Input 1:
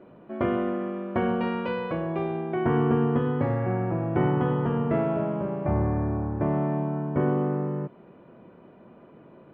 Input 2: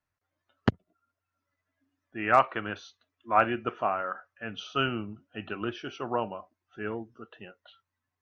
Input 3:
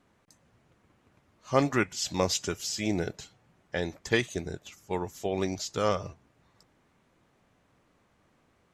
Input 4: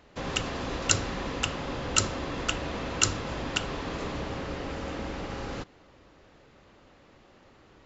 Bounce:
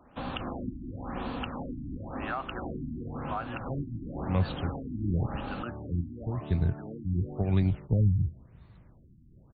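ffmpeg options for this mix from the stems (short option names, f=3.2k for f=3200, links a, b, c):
-filter_complex "[0:a]volume=-17dB[a];[1:a]lowshelf=f=480:g=-7,bandreject=f=2.4k:w=12,volume=-2dB,asplit=2[b][c];[2:a]asubboost=boost=9:cutoff=150,adelay=2150,volume=1.5dB[d];[3:a]volume=-1.5dB[e];[c]apad=whole_len=480172[f];[d][f]sidechaincompress=threshold=-46dB:ratio=4:attack=9.8:release=271[g];[b][e]amix=inputs=2:normalize=0,equalizer=f=250:t=o:w=0.33:g=7,equalizer=f=400:t=o:w=0.33:g=-10,equalizer=f=800:t=o:w=0.33:g=5,equalizer=f=1.25k:t=o:w=0.33:g=3,equalizer=f=2k:t=o:w=0.33:g=-8,equalizer=f=4k:t=o:w=0.33:g=-3,acompressor=threshold=-30dB:ratio=3,volume=0dB[h];[a][g][h]amix=inputs=3:normalize=0,acrossover=split=160[i][j];[j]acompressor=threshold=-32dB:ratio=2[k];[i][k]amix=inputs=2:normalize=0,afftfilt=real='re*lt(b*sr/1024,330*pow(4700/330,0.5+0.5*sin(2*PI*0.95*pts/sr)))':imag='im*lt(b*sr/1024,330*pow(4700/330,0.5+0.5*sin(2*PI*0.95*pts/sr)))':win_size=1024:overlap=0.75"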